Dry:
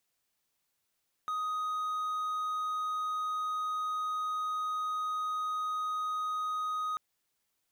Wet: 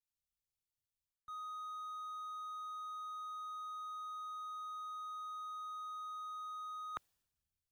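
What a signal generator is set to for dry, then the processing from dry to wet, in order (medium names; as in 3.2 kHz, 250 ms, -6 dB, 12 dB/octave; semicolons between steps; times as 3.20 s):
tone triangle 1.25 kHz -29 dBFS 5.69 s
band-stop 2.1 kHz, Q 11; reverse; compression 16:1, threshold -43 dBFS; reverse; three bands expanded up and down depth 100%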